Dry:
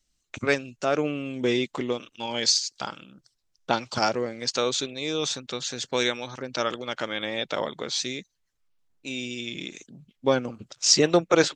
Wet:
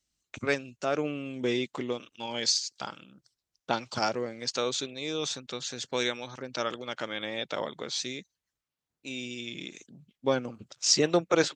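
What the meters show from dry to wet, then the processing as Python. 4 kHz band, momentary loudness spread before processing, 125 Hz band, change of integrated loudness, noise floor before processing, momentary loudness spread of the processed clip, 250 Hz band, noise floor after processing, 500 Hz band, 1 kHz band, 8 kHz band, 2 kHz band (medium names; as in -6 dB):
-4.5 dB, 16 LU, -4.5 dB, -4.5 dB, -75 dBFS, 16 LU, -4.5 dB, under -85 dBFS, -4.5 dB, -4.5 dB, -4.5 dB, -4.5 dB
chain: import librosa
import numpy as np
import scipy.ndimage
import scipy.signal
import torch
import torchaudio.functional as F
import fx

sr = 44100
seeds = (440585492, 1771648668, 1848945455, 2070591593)

y = scipy.signal.sosfilt(scipy.signal.butter(2, 48.0, 'highpass', fs=sr, output='sos'), x)
y = y * 10.0 ** (-4.5 / 20.0)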